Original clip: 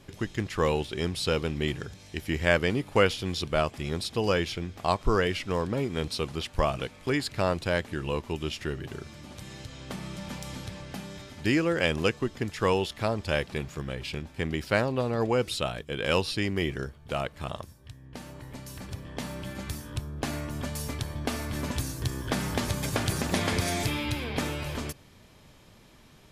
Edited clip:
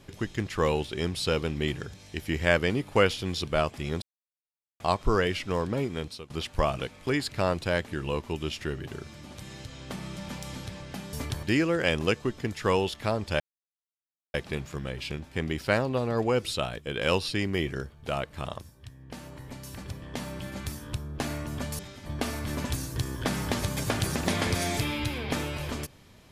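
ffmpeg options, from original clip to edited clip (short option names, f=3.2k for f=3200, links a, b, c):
-filter_complex "[0:a]asplit=9[a][b][c][d][e][f][g][h][i];[a]atrim=end=4.02,asetpts=PTS-STARTPTS,afade=t=out:st=4.016:d=0.004:c=hsin[j];[b]atrim=start=4.02:end=4.8,asetpts=PTS-STARTPTS,volume=0[k];[c]atrim=start=4.8:end=6.3,asetpts=PTS-STARTPTS,afade=t=in:d=0.004:c=hsin,afade=t=out:st=1.04:d=0.46:silence=0.0707946[l];[d]atrim=start=6.3:end=11.132,asetpts=PTS-STARTPTS,afade=t=in:d=0.004:c=hsin:silence=0.0707946[m];[e]atrim=start=20.818:end=21.122[n];[f]atrim=start=11.398:end=13.37,asetpts=PTS-STARTPTS,afade=t=out:st=1.968:d=0.004:c=hsin,apad=pad_dur=0.94[o];[g]atrim=start=13.37:end=20.822,asetpts=PTS-STARTPTS,afade=t=in:d=0.004:c=hsin[p];[h]atrim=start=11.128:end=11.402[q];[i]atrim=start=21.118[r];[j][k][l][m]concat=n=4:v=0:a=1[s];[s][n]acrossfade=d=0.004:c1=hsin:c2=hsin[t];[o][p]concat=n=2:v=0:a=1[u];[t][u]acrossfade=d=0.004:c1=hsin:c2=hsin[v];[v][q]acrossfade=d=0.004:c1=hsin:c2=hsin[w];[w][r]acrossfade=d=0.004:c1=hsin:c2=hsin"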